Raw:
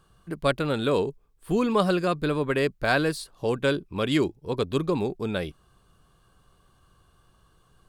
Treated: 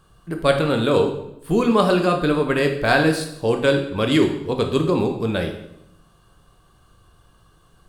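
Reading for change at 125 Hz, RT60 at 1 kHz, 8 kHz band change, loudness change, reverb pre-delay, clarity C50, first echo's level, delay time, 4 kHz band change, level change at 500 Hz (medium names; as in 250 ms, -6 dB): +6.0 dB, 0.75 s, +6.0 dB, +6.0 dB, 13 ms, 7.5 dB, no echo, no echo, +6.0 dB, +6.5 dB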